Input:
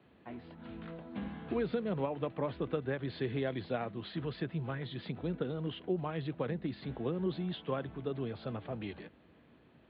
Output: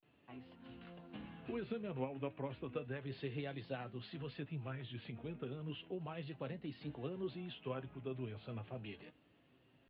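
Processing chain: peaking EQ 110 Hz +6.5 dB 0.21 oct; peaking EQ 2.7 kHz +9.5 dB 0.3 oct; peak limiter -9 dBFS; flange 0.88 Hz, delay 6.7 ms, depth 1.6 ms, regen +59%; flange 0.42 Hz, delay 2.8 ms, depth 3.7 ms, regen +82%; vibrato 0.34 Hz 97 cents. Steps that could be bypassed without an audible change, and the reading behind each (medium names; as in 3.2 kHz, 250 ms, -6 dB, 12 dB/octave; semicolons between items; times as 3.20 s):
peak limiter -9 dBFS: peak at its input -20.0 dBFS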